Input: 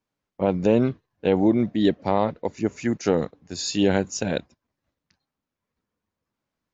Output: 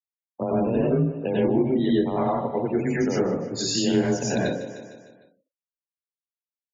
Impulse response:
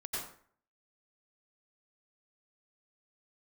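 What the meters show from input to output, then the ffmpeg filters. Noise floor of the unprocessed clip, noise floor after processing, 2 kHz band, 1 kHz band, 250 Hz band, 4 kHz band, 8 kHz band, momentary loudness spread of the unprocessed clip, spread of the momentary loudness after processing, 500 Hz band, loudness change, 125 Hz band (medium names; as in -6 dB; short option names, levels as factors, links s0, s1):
under -85 dBFS, under -85 dBFS, -0.5 dB, -0.5 dB, 0.0 dB, +1.5 dB, no reading, 8 LU, 6 LU, -0.5 dB, -0.5 dB, +1.5 dB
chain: -filter_complex "[0:a]alimiter=limit=0.237:level=0:latency=1:release=327,afreqshift=23[s0];[1:a]atrim=start_sample=2205[s1];[s0][s1]afir=irnorm=-1:irlink=0,afftfilt=real='re*gte(hypot(re,im),0.0158)':imag='im*gte(hypot(re,im),0.0158)':win_size=1024:overlap=0.75,aecho=1:1:152|304|456|608|760:0.141|0.0763|0.0412|0.0222|0.012,acrossover=split=140[s2][s3];[s3]acompressor=threshold=0.0158:ratio=2[s4];[s2][s4]amix=inputs=2:normalize=0,volume=2.66"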